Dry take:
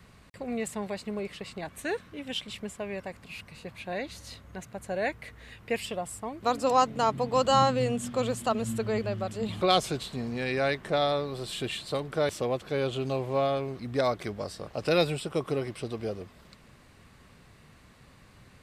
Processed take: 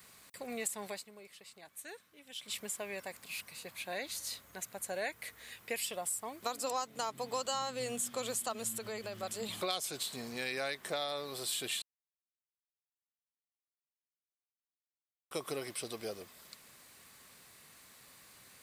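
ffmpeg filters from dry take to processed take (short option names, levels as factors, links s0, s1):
-filter_complex "[0:a]asettb=1/sr,asplit=3[s0][s1][s2];[s0]atrim=end=8.684[s3];[s1]atrim=start=8.68:end=9.23,asetpts=PTS-STARTPTS,afade=t=in:d=0.004:c=qsin,afade=t=out:st=0.546:d=0.004:c=qsin,acompressor=threshold=0.0316:ratio=6:attack=3.2:release=140:knee=1:detection=peak[s4];[s2]atrim=start=9.226[s5];[s3][s4]acrossfade=d=0.004:c1=hsin:c2=qsin[s6];[s6][s5]acrossfade=d=0.004:c1=qsin:c2=hsin,asplit=5[s7][s8][s9][s10][s11];[s7]atrim=end=1.05,asetpts=PTS-STARTPTS,afade=t=out:st=0.89:d=0.16:silence=0.237137[s12];[s8]atrim=start=1.05:end=2.38,asetpts=PTS-STARTPTS,volume=0.237[s13];[s9]atrim=start=2.38:end=11.82,asetpts=PTS-STARTPTS,afade=t=in:d=0.16:silence=0.237137,afade=t=out:st=9.436:d=0.004:c=hsin[s14];[s10]atrim=start=11.82:end=15.31,asetpts=PTS-STARTPTS,volume=0[s15];[s11]atrim=start=15.31,asetpts=PTS-STARTPTS,afade=t=in:d=0.004:c=hsin[s16];[s12][s13][s14][s15][s16]concat=n=5:v=0:a=1,aemphasis=mode=production:type=riaa,bandreject=f=2800:w=25,acompressor=threshold=0.0355:ratio=5,volume=0.631"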